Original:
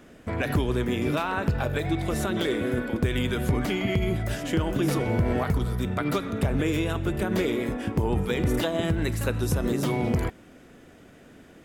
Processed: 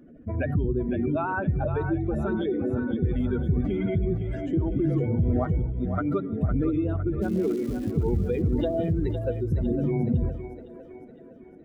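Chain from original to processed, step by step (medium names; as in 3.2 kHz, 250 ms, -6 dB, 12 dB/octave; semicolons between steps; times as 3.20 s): spectral contrast enhancement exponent 2.3; 7.21–7.90 s: crackle 480 per s -38 dBFS; two-band feedback delay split 350 Hz, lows 84 ms, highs 508 ms, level -8.5 dB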